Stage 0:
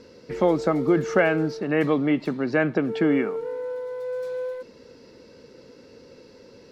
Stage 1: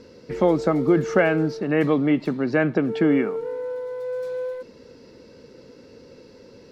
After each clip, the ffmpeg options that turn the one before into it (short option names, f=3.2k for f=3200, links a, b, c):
-af "lowshelf=f=380:g=3.5"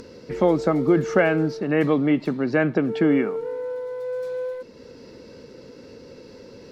-af "acompressor=mode=upward:threshold=-37dB:ratio=2.5"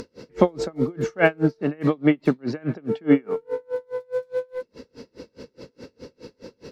-af "aeval=exprs='val(0)*pow(10,-35*(0.5-0.5*cos(2*PI*4.8*n/s))/20)':c=same,volume=6.5dB"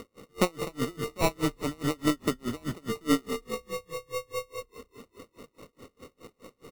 -filter_complex "[0:a]aeval=exprs='if(lt(val(0),0),0.708*val(0),val(0))':c=same,acrusher=samples=27:mix=1:aa=0.000001,asplit=7[a][b][c][d][e][f][g];[b]adelay=200,afreqshift=-31,volume=-14dB[h];[c]adelay=400,afreqshift=-62,volume=-19.2dB[i];[d]adelay=600,afreqshift=-93,volume=-24.4dB[j];[e]adelay=800,afreqshift=-124,volume=-29.6dB[k];[f]adelay=1000,afreqshift=-155,volume=-34.8dB[l];[g]adelay=1200,afreqshift=-186,volume=-40dB[m];[a][h][i][j][k][l][m]amix=inputs=7:normalize=0,volume=-6.5dB"